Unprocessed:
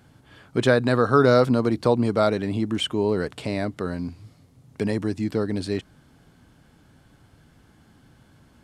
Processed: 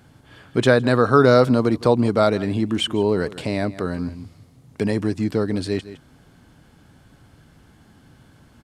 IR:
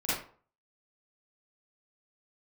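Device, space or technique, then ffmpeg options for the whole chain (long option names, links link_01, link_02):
ducked delay: -filter_complex "[0:a]asplit=3[link_01][link_02][link_03];[link_02]adelay=161,volume=-9dB[link_04];[link_03]apad=whole_len=387766[link_05];[link_04][link_05]sidechaincompress=threshold=-30dB:ratio=8:attack=16:release=390[link_06];[link_01][link_06]amix=inputs=2:normalize=0,volume=3dB"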